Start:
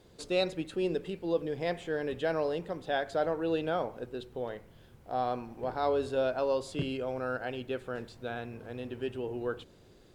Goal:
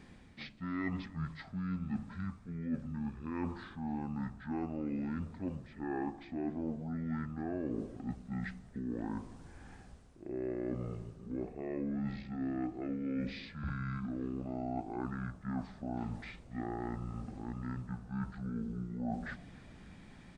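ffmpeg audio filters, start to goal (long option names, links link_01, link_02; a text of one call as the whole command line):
ffmpeg -i in.wav -filter_complex "[0:a]areverse,acompressor=threshold=-41dB:ratio=6,areverse,lowshelf=frequency=190:gain=-3.5,asplit=6[link_01][link_02][link_03][link_04][link_05][link_06];[link_02]adelay=142,afreqshift=-110,volume=-23dB[link_07];[link_03]adelay=284,afreqshift=-220,volume=-27.2dB[link_08];[link_04]adelay=426,afreqshift=-330,volume=-31.3dB[link_09];[link_05]adelay=568,afreqshift=-440,volume=-35.5dB[link_10];[link_06]adelay=710,afreqshift=-550,volume=-39.6dB[link_11];[link_01][link_07][link_08][link_09][link_10][link_11]amix=inputs=6:normalize=0,asetrate=21962,aresample=44100,volume=6dB" out.wav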